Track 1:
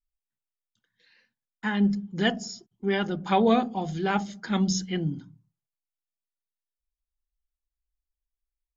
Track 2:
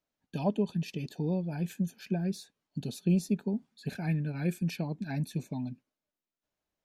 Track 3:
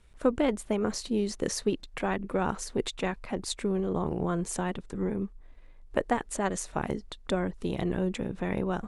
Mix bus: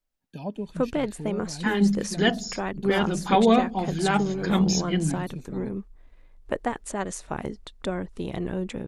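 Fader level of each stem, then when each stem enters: +2.5, −4.0, −0.5 decibels; 0.00, 0.00, 0.55 seconds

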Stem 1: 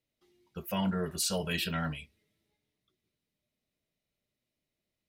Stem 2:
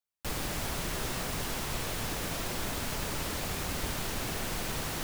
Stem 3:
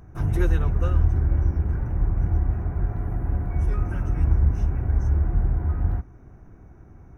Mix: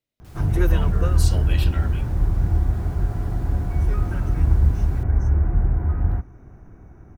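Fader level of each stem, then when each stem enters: −1.5, −18.0, +2.5 decibels; 0.00, 0.00, 0.20 seconds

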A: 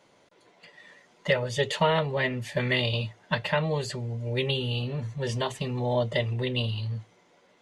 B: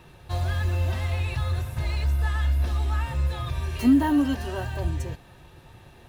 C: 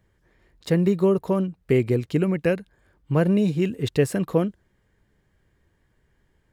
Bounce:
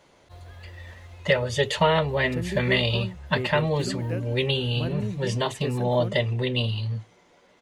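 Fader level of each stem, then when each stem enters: +3.0, −18.5, −12.0 decibels; 0.00, 0.00, 1.65 seconds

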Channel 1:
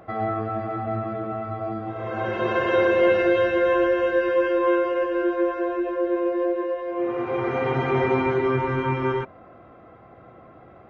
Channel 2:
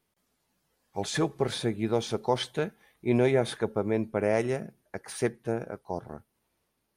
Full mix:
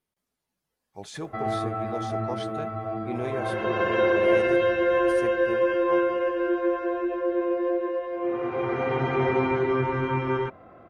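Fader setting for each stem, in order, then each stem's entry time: −2.0, −8.5 decibels; 1.25, 0.00 seconds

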